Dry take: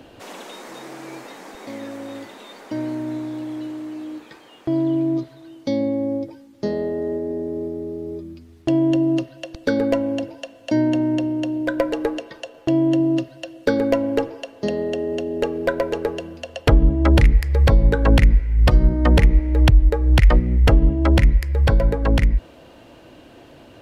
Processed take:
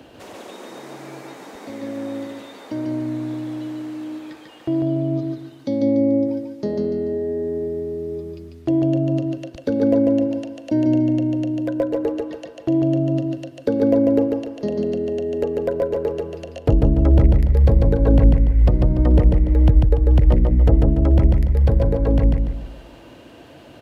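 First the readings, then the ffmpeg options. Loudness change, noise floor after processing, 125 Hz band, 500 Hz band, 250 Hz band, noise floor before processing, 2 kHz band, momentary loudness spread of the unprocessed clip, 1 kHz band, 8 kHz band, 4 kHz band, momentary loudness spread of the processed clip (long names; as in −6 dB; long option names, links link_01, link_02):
+0.5 dB, −43 dBFS, +1.5 dB, +1.5 dB, +1.5 dB, −47 dBFS, −12.0 dB, 19 LU, −5.0 dB, can't be measured, below −10 dB, 17 LU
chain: -filter_complex "[0:a]highpass=51,acrossover=split=720[link_01][link_02];[link_02]acompressor=threshold=-43dB:ratio=6[link_03];[link_01][link_03]amix=inputs=2:normalize=0,aecho=1:1:145|290|435|580|725:0.708|0.255|0.0917|0.033|0.0119"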